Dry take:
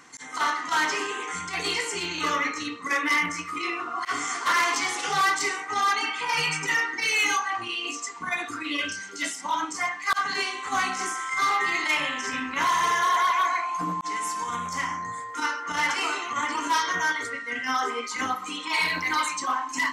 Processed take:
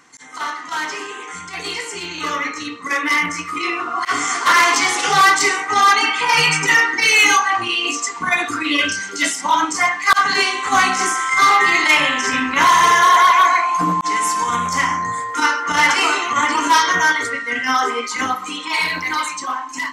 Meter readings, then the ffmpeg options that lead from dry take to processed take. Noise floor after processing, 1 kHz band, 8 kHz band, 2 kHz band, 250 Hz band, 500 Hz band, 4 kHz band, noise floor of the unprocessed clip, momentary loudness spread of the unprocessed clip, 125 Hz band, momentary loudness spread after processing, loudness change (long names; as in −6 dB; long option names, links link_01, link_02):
−32 dBFS, +10.0 dB, +10.0 dB, +9.5 dB, +9.0 dB, +9.0 dB, +9.5 dB, −38 dBFS, 8 LU, +10.0 dB, 13 LU, +10.0 dB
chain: -af "dynaudnorm=framelen=990:gausssize=7:maxgain=11.5dB"